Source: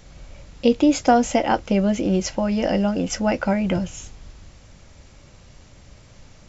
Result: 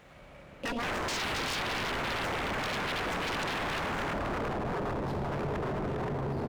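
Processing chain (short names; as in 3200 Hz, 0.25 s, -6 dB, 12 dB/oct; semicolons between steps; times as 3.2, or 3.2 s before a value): median filter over 9 samples; HPF 220 Hz 6 dB/oct; high shelf 4000 Hz -11.5 dB; speakerphone echo 0.35 s, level -6 dB; digital reverb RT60 4.3 s, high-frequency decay 0.3×, pre-delay 5 ms, DRR 0 dB; echoes that change speed 0.418 s, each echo -7 st, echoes 3, each echo -6 dB; wavefolder -23.5 dBFS; mismatched tape noise reduction encoder only; gain -4.5 dB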